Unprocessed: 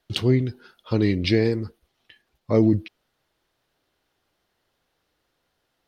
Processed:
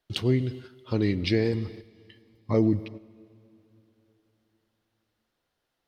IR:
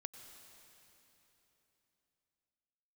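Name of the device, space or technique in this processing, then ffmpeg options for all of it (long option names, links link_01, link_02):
keyed gated reverb: -filter_complex "[0:a]asettb=1/sr,asplit=3[link_01][link_02][link_03];[link_01]atrim=end=1.534[link_04];[link_02]atrim=start=1.53:end=2.54,asetpts=PTS-STARTPTS,afade=type=in:duration=0.004:curve=qsin,afade=type=out:start_time=1.006:duration=0.004:curve=qsin,aecho=1:1:1:0.67,atrim=end_sample=44541[link_05];[link_03]atrim=start=2.536[link_06];[link_04][link_05]acrossfade=duration=0.004:curve1=hsin:curve2=qsin[link_07];[link_07][link_06]acrossfade=duration=0.004:curve1=qsin:curve2=hsin,asplit=3[link_08][link_09][link_10];[1:a]atrim=start_sample=2205[link_11];[link_09][link_11]afir=irnorm=-1:irlink=0[link_12];[link_10]apad=whole_len=258911[link_13];[link_12][link_13]sidechaingate=range=-9dB:threshold=-45dB:ratio=16:detection=peak,volume=-0.5dB[link_14];[link_08][link_14]amix=inputs=2:normalize=0,volume=-8dB"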